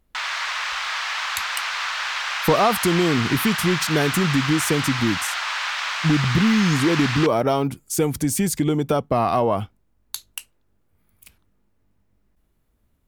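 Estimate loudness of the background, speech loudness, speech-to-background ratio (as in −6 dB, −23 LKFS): −25.0 LKFS, −21.5 LKFS, 3.5 dB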